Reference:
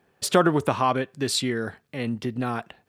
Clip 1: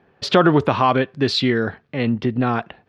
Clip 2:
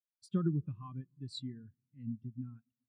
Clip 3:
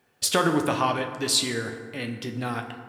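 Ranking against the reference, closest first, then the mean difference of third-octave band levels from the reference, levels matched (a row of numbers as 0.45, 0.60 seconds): 1, 3, 2; 3.5, 7.0, 16.5 decibels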